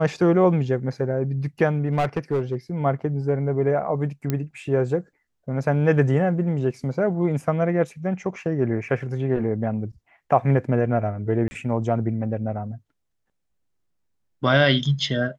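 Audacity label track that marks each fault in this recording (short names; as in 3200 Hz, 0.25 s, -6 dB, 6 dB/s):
1.850000	2.560000	clipped -17.5 dBFS
4.300000	4.300000	pop -11 dBFS
11.480000	11.510000	gap 30 ms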